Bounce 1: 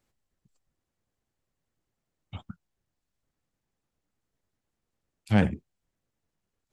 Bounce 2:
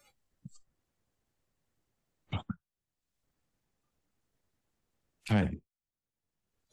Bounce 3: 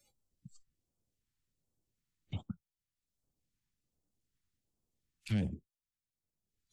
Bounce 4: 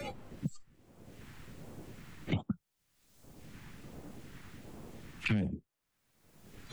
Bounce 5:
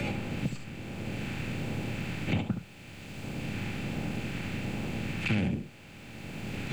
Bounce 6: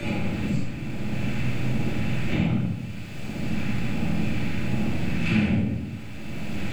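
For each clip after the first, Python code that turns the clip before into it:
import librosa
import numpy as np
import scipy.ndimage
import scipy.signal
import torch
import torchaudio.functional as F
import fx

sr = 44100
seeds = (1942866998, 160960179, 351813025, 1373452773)

y1 = fx.noise_reduce_blind(x, sr, reduce_db=21)
y1 = fx.band_squash(y1, sr, depth_pct=70)
y1 = y1 * librosa.db_to_amplitude(1.5)
y2 = fx.phaser_stages(y1, sr, stages=2, low_hz=550.0, high_hz=2000.0, hz=1.3, feedback_pct=25)
y2 = y2 * librosa.db_to_amplitude(-4.5)
y3 = fx.band_squash(y2, sr, depth_pct=100)
y3 = y3 * librosa.db_to_amplitude(11.5)
y4 = fx.bin_compress(y3, sr, power=0.4)
y4 = y4 + 10.0 ** (-8.5 / 20.0) * np.pad(y4, (int(71 * sr / 1000.0), 0))[:len(y4)]
y5 = fx.room_shoebox(y4, sr, seeds[0], volume_m3=450.0, walls='mixed', distance_m=2.9)
y5 = y5 * librosa.db_to_amplitude(-3.0)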